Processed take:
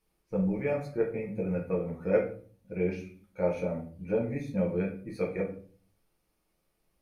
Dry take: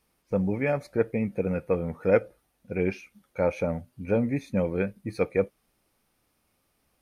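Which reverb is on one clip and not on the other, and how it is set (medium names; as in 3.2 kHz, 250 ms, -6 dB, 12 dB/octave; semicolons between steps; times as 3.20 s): simulated room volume 36 m³, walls mixed, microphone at 0.72 m; trim -10 dB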